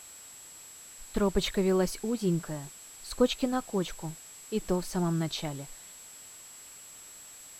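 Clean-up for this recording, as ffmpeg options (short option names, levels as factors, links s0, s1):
-af "adeclick=t=4,bandreject=f=7700:w=30,afftdn=nr=26:nf=-49"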